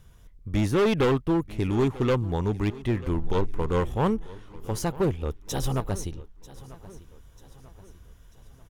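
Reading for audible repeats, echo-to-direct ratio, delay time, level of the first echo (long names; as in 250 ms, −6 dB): 3, −18.0 dB, 941 ms, −19.0 dB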